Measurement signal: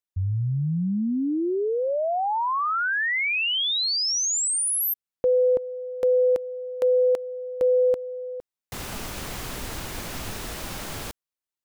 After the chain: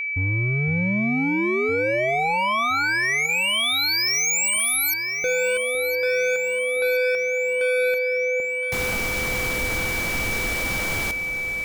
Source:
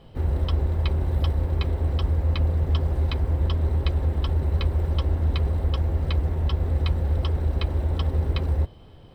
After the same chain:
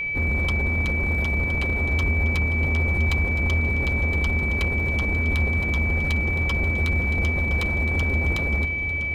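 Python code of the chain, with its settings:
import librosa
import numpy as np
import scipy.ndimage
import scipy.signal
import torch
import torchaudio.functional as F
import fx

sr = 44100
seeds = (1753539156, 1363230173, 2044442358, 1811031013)

y = np.clip(10.0 ** (28.0 / 20.0) * x, -1.0, 1.0) / 10.0 ** (28.0 / 20.0)
y = fx.echo_alternate(y, sr, ms=508, hz=860.0, feedback_pct=76, wet_db=-10)
y = y + 10.0 ** (-30.0 / 20.0) * np.sin(2.0 * np.pi * 2300.0 * np.arange(len(y)) / sr)
y = y * librosa.db_to_amplitude(5.5)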